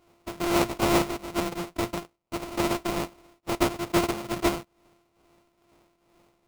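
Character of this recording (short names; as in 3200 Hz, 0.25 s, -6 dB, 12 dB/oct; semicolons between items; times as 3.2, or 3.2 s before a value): a buzz of ramps at a fixed pitch in blocks of 128 samples; tremolo triangle 2.3 Hz, depth 75%; aliases and images of a low sample rate 1700 Hz, jitter 20%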